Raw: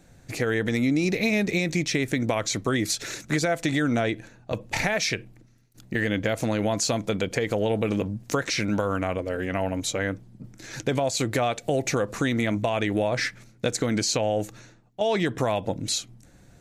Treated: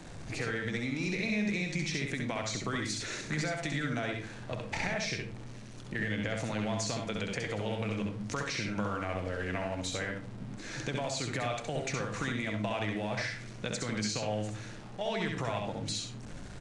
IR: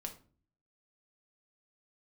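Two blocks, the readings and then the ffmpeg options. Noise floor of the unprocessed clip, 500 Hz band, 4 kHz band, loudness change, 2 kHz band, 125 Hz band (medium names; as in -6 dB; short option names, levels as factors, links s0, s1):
-55 dBFS, -10.5 dB, -7.0 dB, -8.5 dB, -6.0 dB, -6.5 dB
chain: -filter_complex "[0:a]aeval=exprs='val(0)+0.5*0.0133*sgn(val(0))':c=same,highshelf=f=8200:g=-11,acrossover=split=150|860[s0][s1][s2];[s0]acompressor=threshold=0.0178:ratio=4[s3];[s1]acompressor=threshold=0.0178:ratio=4[s4];[s2]acompressor=threshold=0.0355:ratio=4[s5];[s3][s4][s5]amix=inputs=3:normalize=0,asplit=2[s6][s7];[1:a]atrim=start_sample=2205,adelay=66[s8];[s7][s8]afir=irnorm=-1:irlink=0,volume=1[s9];[s6][s9]amix=inputs=2:normalize=0,aresample=22050,aresample=44100,volume=0.531"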